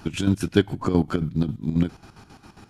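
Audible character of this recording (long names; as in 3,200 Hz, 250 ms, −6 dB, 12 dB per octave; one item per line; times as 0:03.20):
chopped level 7.4 Hz, depth 65%, duty 55%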